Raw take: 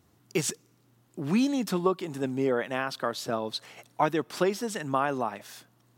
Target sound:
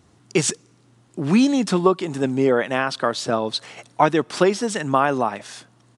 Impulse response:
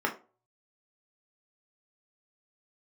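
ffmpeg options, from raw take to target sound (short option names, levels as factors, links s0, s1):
-af "aresample=22050,aresample=44100,volume=2.66"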